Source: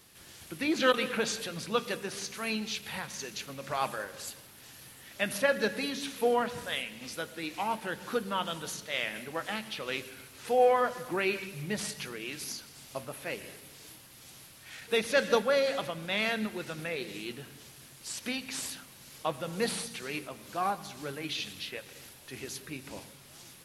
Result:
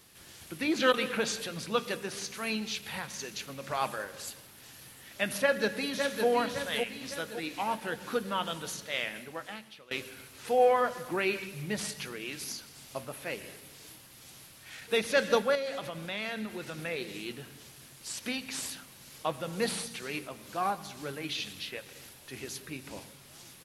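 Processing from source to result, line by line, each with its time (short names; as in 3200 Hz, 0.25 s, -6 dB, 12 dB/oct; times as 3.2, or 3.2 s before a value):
5.37–6.27 echo throw 0.56 s, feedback 50%, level -5.5 dB
8.93–9.91 fade out, to -21.5 dB
15.55–16.84 compressor 2.5:1, threshold -34 dBFS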